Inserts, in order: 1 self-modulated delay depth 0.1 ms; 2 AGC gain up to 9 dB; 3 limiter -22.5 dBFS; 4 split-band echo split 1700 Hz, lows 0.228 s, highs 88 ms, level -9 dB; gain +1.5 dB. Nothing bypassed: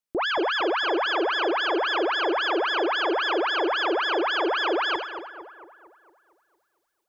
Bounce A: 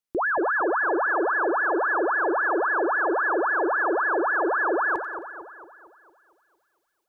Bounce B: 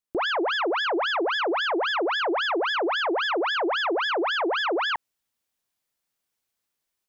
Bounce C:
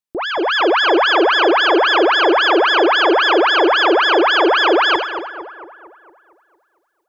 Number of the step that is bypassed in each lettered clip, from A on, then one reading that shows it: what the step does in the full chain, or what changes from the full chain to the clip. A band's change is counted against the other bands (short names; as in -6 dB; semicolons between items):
1, 2 kHz band +3.0 dB; 4, echo-to-direct -7.5 dB to none; 3, mean gain reduction 10.5 dB